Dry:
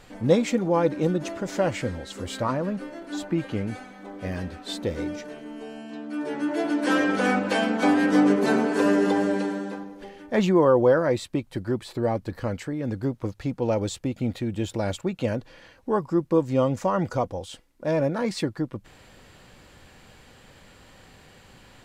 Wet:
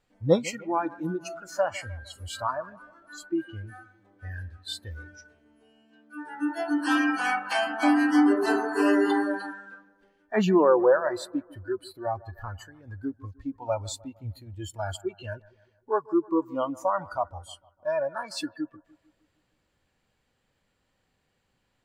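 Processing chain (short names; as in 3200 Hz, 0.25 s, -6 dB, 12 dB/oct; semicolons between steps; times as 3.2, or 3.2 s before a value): spectral noise reduction 23 dB; 8.85–9.89 bell 2600 Hz +4.5 dB 1.2 oct; analogue delay 0.153 s, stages 2048, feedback 49%, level -21 dB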